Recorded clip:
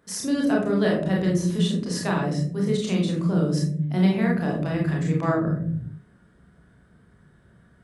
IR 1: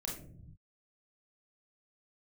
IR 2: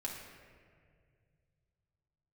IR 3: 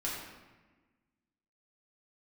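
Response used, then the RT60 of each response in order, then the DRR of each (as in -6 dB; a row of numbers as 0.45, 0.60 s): 1; 0.60, 2.1, 1.3 s; -2.0, -3.0, -6.5 dB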